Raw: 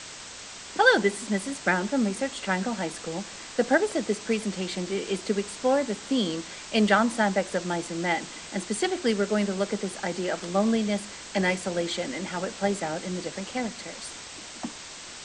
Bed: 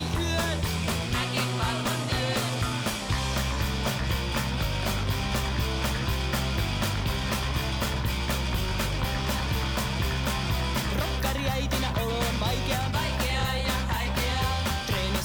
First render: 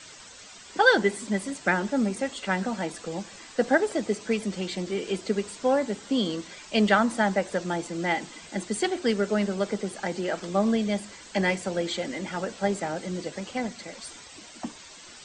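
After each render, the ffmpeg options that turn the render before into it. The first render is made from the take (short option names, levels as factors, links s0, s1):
-af "afftdn=nr=10:nf=-42"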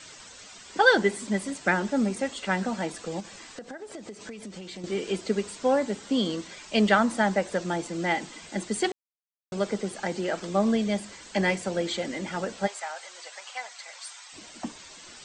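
-filter_complex "[0:a]asettb=1/sr,asplit=3[s0][s1][s2];[s0]atrim=end=3.204[s3];[s1]atrim=start=3.2:end=4.84,asetpts=PTS-STARTPTS,afade=t=in:d=0.004:c=qsin,afade=t=out:st=1.636:d=0.004:c=qsin,acompressor=threshold=0.0158:ratio=12:attack=3.2:release=140:knee=1:detection=peak[s4];[s2]atrim=start=4.836[s5];[s3][s4]acrossfade=d=0.004:c1=hsin:c2=qsin[s6];[s6][s5]acrossfade=d=0.004:c1=qsin:c2=hsin,asplit=3[s7][s8][s9];[s7]afade=t=out:st=12.66:d=0.02[s10];[s8]highpass=f=780:w=0.5412,highpass=f=780:w=1.3066,afade=t=in:st=12.66:d=0.02,afade=t=out:st=14.32:d=0.02[s11];[s9]afade=t=in:st=14.32:d=0.02[s12];[s10][s11][s12]amix=inputs=3:normalize=0,asplit=3[s13][s14][s15];[s13]atrim=end=8.92,asetpts=PTS-STARTPTS,afade=t=out:st=8.916:d=0.004:c=hsin[s16];[s14]atrim=start=8.92:end=9.52,asetpts=PTS-STARTPTS,volume=0[s17];[s15]atrim=start=9.52,asetpts=PTS-STARTPTS,afade=t=in:d=0.004:c=hsin[s18];[s16][s17][s18]concat=n=3:v=0:a=1"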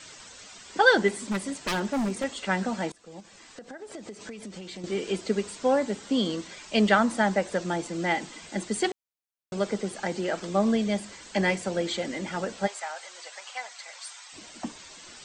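-filter_complex "[0:a]asettb=1/sr,asplit=3[s0][s1][s2];[s0]atrim=end=1.084[s3];[s1]atrim=start=1.08:end=2.24,asetpts=PTS-STARTPTS,afade=t=in:d=0.004:c=qsin,afade=t=out:st=1.156:d=0.004:c=qsin,aeval=exprs='0.0794*(abs(mod(val(0)/0.0794+3,4)-2)-1)':c=same[s4];[s2]atrim=start=2.236[s5];[s3][s4]acrossfade=d=0.004:c1=hsin:c2=qsin[s6];[s6][s5]acrossfade=d=0.004:c1=qsin:c2=hsin,asplit=2[s7][s8];[s7]atrim=end=2.92,asetpts=PTS-STARTPTS,afade=t=out:st=2.916:d=0.004:c=hsin:silence=0.0794328[s9];[s8]atrim=start=2.92,asetpts=PTS-STARTPTS,afade=t=in:d=1.04:silence=0.0794328[s10];[s9][s10]concat=n=2:v=0:a=1"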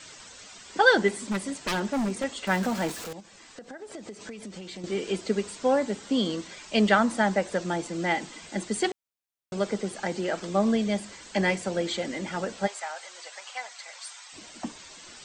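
-filter_complex "[0:a]asettb=1/sr,asplit=3[s0][s1][s2];[s0]atrim=end=2.474[s3];[s1]atrim=start=2.47:end=3.13,asetpts=PTS-STARTPTS,afade=t=in:d=0.004:c=qsin,afade=t=out:st=0.656:d=0.004:c=qsin,aeval=exprs='val(0)+0.5*0.0224*sgn(val(0))':c=same[s4];[s2]atrim=start=3.126[s5];[s3][s4]acrossfade=d=0.004:c1=hsin:c2=qsin[s6];[s6][s5]acrossfade=d=0.004:c1=qsin:c2=hsin"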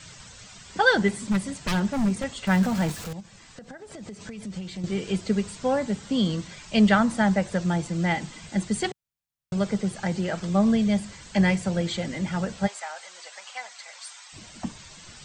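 -af "lowshelf=f=210:t=q:w=1.5:g=11"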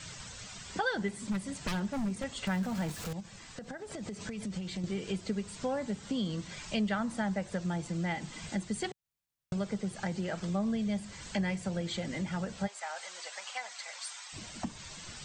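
-af "acompressor=threshold=0.0178:ratio=2.5"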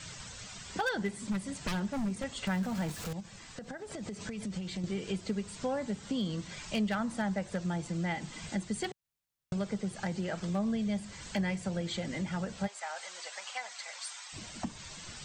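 -af "aeval=exprs='0.0668*(abs(mod(val(0)/0.0668+3,4)-2)-1)':c=same"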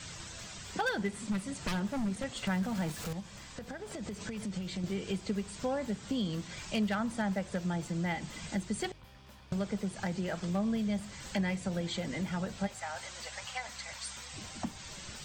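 -filter_complex "[1:a]volume=0.0447[s0];[0:a][s0]amix=inputs=2:normalize=0"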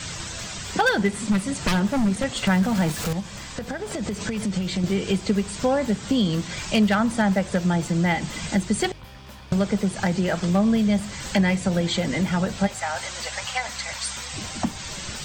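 -af "volume=3.98"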